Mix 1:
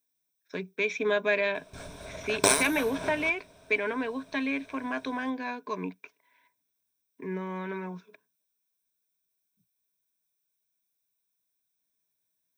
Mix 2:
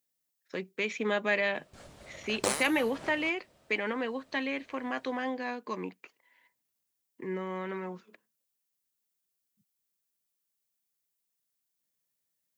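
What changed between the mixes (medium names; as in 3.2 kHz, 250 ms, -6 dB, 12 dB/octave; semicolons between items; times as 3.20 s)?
background -7.0 dB; master: remove rippled EQ curve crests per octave 1.6, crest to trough 11 dB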